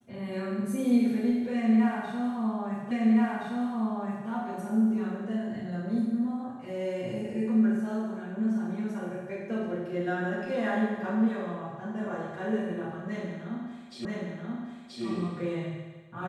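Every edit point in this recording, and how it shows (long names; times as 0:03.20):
0:02.91: the same again, the last 1.37 s
0:14.05: the same again, the last 0.98 s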